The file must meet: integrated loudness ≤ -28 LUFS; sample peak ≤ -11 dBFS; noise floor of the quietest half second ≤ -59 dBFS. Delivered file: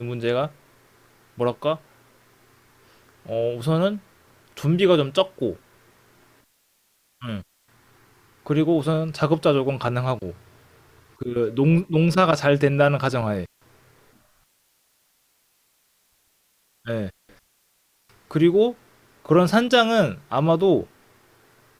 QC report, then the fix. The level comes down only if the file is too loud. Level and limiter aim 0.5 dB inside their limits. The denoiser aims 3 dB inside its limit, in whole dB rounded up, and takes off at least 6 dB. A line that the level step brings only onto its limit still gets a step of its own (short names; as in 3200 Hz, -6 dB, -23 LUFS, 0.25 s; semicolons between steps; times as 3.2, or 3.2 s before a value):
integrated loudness -21.5 LUFS: fail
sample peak -5.0 dBFS: fail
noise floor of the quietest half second -66 dBFS: OK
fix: gain -7 dB